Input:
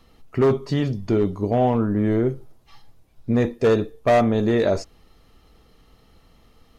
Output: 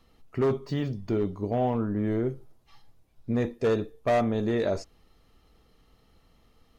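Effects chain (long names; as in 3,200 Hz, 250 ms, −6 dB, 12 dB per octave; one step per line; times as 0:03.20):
0:00.59–0:02.08: linearly interpolated sample-rate reduction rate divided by 2×
level −7 dB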